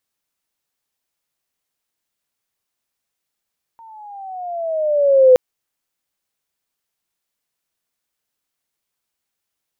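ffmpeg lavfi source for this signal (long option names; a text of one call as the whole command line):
ffmpeg -f lavfi -i "aevalsrc='pow(10,(-4.5+34.5*(t/1.57-1))/20)*sin(2*PI*921*1.57/(-10.5*log(2)/12)*(exp(-10.5*log(2)/12*t/1.57)-1))':duration=1.57:sample_rate=44100" out.wav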